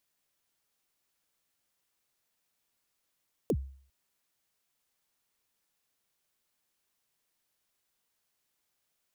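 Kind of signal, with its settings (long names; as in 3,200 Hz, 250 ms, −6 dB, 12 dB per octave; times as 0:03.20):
synth kick length 0.40 s, from 550 Hz, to 67 Hz, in 60 ms, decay 0.51 s, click on, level −22 dB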